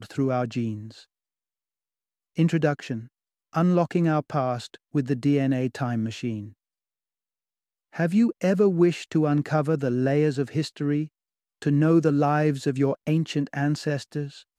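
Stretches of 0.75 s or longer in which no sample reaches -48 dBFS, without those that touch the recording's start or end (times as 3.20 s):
1.04–2.36 s
6.53–7.93 s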